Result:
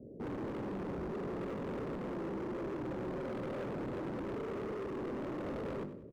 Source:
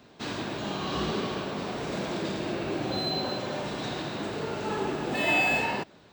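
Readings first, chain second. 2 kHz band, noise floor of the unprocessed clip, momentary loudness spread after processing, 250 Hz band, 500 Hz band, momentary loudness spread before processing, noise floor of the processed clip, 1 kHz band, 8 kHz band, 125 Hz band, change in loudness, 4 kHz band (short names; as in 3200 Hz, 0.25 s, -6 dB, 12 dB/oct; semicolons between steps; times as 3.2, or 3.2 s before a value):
-20.0 dB, -55 dBFS, 1 LU, -6.0 dB, -6.5 dB, 9 LU, -49 dBFS, -13.0 dB, under -20 dB, -7.0 dB, -10.0 dB, -26.0 dB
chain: Chebyshev low-pass 550 Hz, order 5; notches 50/100/150/200/250/300/350 Hz; in parallel at +2.5 dB: negative-ratio compressor -38 dBFS, ratio -0.5; on the sum: overloaded stage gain 35.5 dB; on a send: feedback echo 97 ms, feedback 38%, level -12.5 dB; on the sum: gain -2.5 dB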